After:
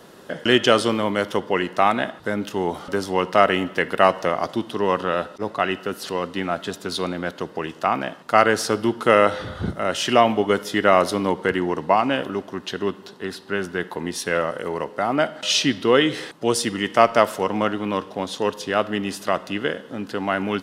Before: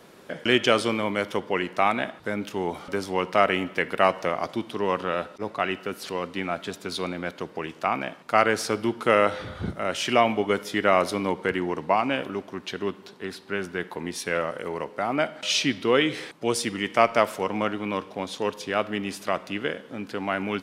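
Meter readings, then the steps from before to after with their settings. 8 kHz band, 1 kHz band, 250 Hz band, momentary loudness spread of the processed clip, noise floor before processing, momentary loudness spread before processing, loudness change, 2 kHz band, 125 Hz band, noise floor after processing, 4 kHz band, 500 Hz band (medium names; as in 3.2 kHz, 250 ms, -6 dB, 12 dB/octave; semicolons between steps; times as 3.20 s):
+4.5 dB, +4.5 dB, +4.5 dB, 11 LU, -48 dBFS, 11 LU, +4.0 dB, +3.0 dB, +4.5 dB, -44 dBFS, +4.0 dB, +4.5 dB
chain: band-stop 2.3 kHz, Q 6.3; trim +4.5 dB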